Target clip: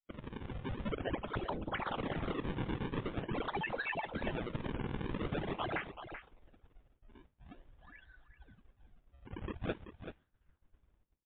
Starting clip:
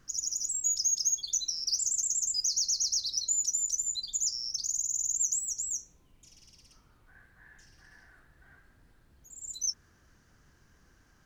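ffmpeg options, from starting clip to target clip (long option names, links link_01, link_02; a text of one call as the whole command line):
ffmpeg -i in.wav -af "afftdn=noise_reduction=18:noise_floor=-44,acrusher=samples=39:mix=1:aa=0.000001:lfo=1:lforange=62.4:lforate=0.46,areverse,acompressor=threshold=-43dB:ratio=10,areverse,aecho=1:1:383:0.316,dynaudnorm=framelen=190:gausssize=7:maxgain=7dB,agate=range=-33dB:threshold=-59dB:ratio=3:detection=peak,volume=1.5dB" -ar 8000 -c:a libmp3lame -b:a 32k out.mp3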